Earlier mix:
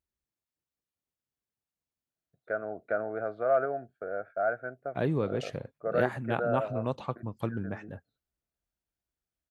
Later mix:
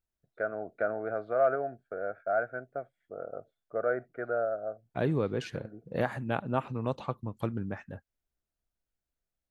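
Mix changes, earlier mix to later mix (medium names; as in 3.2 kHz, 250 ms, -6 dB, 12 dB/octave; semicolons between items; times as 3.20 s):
first voice: entry -2.10 s; master: remove high-pass 45 Hz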